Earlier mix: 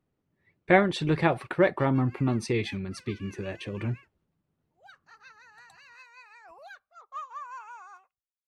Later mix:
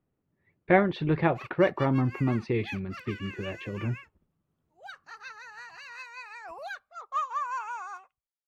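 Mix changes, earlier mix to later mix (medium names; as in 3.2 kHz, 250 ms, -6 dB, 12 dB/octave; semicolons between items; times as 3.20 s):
speech: add distance through air 300 m; background +8.5 dB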